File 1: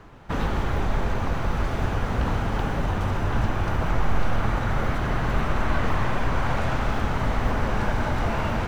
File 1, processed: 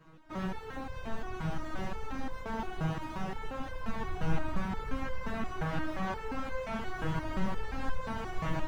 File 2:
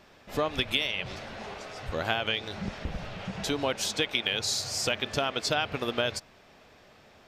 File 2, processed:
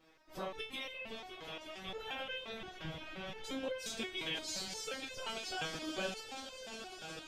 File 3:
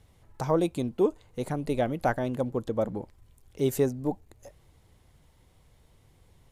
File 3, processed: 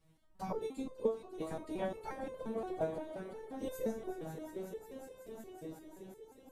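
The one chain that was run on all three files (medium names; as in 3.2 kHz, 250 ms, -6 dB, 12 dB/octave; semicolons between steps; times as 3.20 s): echo with a slow build-up 183 ms, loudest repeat 5, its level -13.5 dB; whisper effect; resonator arpeggio 5.7 Hz 160–520 Hz; trim +1.5 dB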